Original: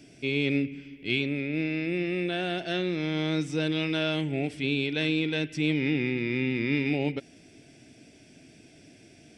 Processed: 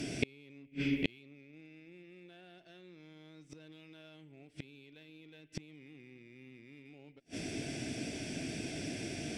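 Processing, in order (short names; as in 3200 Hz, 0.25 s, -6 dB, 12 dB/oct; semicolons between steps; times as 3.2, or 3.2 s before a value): limiter -20 dBFS, peak gain reduction 5.5 dB; added harmonics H 6 -29 dB, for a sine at -20 dBFS; flipped gate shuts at -27 dBFS, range -39 dB; gain +13 dB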